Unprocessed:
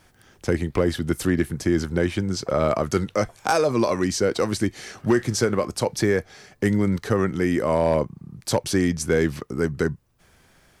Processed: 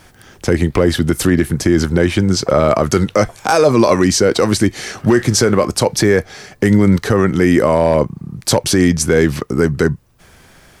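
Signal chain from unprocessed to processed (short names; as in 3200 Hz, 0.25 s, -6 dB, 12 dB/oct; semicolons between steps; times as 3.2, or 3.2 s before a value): maximiser +12.5 dB; gain -1 dB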